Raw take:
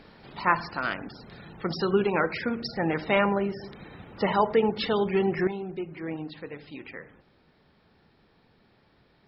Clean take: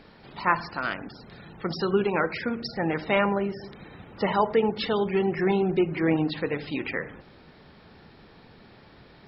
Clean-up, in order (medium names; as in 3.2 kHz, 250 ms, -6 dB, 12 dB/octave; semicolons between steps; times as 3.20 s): trim 0 dB, from 5.47 s +11 dB